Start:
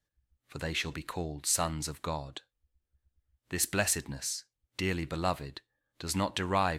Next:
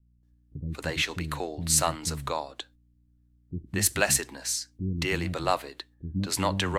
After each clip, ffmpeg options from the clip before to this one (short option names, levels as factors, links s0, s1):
-filter_complex "[0:a]aeval=exprs='val(0)+0.00112*(sin(2*PI*60*n/s)+sin(2*PI*2*60*n/s)/2+sin(2*PI*3*60*n/s)/3+sin(2*PI*4*60*n/s)/4+sin(2*PI*5*60*n/s)/5)':c=same,agate=range=0.398:threshold=0.00158:ratio=16:detection=peak,acrossover=split=270[s0][s1];[s1]adelay=230[s2];[s0][s2]amix=inputs=2:normalize=0,volume=1.88"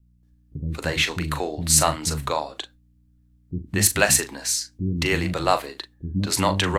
-filter_complex "[0:a]asplit=2[s0][s1];[s1]adelay=39,volume=0.299[s2];[s0][s2]amix=inputs=2:normalize=0,volume=1.88"